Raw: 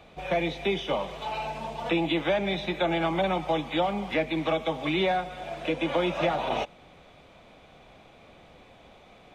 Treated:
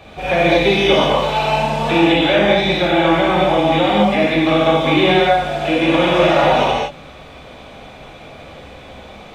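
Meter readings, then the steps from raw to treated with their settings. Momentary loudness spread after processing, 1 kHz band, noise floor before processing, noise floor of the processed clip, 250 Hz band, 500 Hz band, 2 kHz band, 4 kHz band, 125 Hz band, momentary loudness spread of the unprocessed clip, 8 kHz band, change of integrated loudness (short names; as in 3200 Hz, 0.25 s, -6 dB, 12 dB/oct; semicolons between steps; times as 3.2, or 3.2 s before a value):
4 LU, +13.5 dB, -54 dBFS, -38 dBFS, +13.5 dB, +13.5 dB, +14.0 dB, +14.5 dB, +14.0 dB, 7 LU, n/a, +13.5 dB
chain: in parallel at +1 dB: limiter -21.5 dBFS, peak gain reduction 8 dB; on the sum: vocal rider 2 s; non-linear reverb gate 0.27 s flat, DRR -7 dB; gain +1 dB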